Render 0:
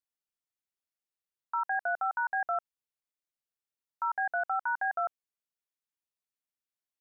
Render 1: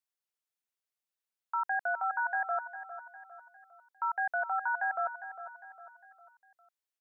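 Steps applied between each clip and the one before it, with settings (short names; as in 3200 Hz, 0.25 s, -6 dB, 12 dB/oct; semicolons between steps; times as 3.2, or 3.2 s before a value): HPF 470 Hz 6 dB/oct; feedback echo 0.404 s, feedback 44%, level -12 dB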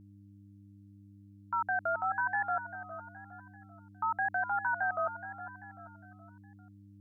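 vibrato 0.95 Hz 93 cents; buzz 100 Hz, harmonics 3, -55 dBFS -4 dB/oct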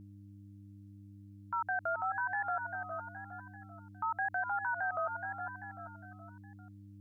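dynamic EQ 210 Hz, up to -7 dB, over -57 dBFS, Q 1.1; limiter -30.5 dBFS, peak gain reduction 8 dB; gain +3.5 dB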